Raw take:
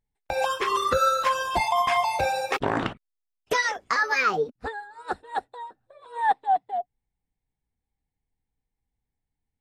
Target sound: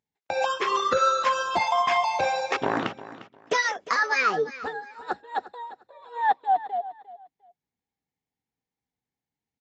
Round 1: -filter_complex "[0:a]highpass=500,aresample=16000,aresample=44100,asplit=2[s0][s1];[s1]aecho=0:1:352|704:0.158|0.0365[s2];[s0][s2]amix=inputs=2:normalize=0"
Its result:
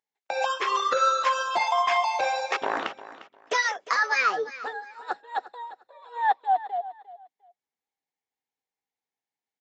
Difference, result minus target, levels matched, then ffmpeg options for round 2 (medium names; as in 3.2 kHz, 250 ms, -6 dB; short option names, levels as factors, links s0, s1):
125 Hz band -16.5 dB
-filter_complex "[0:a]highpass=160,aresample=16000,aresample=44100,asplit=2[s0][s1];[s1]aecho=0:1:352|704:0.158|0.0365[s2];[s0][s2]amix=inputs=2:normalize=0"